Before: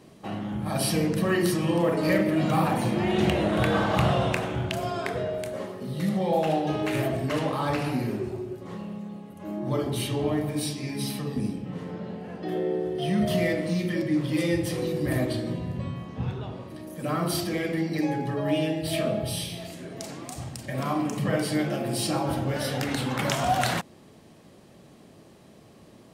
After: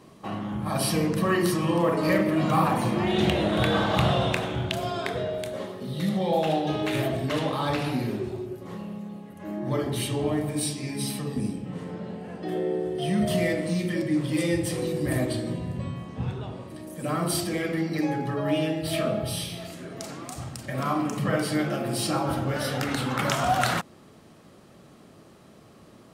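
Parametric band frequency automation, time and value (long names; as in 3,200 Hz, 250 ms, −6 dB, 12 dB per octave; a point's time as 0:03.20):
parametric band +7.5 dB 0.37 octaves
1,100 Hz
from 0:03.07 3,600 Hz
from 0:08.46 12,000 Hz
from 0:09.26 1,800 Hz
from 0:10.02 8,400 Hz
from 0:17.62 1,300 Hz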